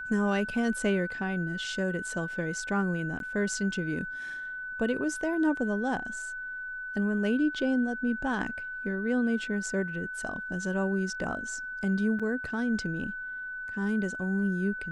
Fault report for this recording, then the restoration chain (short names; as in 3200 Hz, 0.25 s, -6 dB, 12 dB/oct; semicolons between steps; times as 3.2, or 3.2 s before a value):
tone 1500 Hz -35 dBFS
3.19–3.2 gap 12 ms
12.19–12.2 gap 6.4 ms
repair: notch 1500 Hz, Q 30; interpolate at 3.19, 12 ms; interpolate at 12.19, 6.4 ms